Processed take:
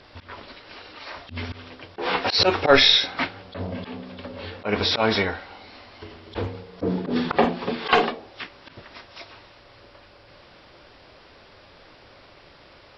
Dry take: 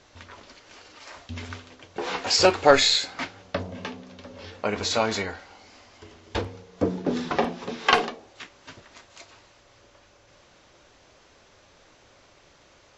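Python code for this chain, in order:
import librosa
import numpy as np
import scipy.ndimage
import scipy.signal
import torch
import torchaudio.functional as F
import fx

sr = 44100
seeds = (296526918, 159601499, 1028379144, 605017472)

y = fx.freq_compress(x, sr, knee_hz=3100.0, ratio=1.5)
y = fx.auto_swell(y, sr, attack_ms=103.0)
y = y * librosa.db_to_amplitude(6.5)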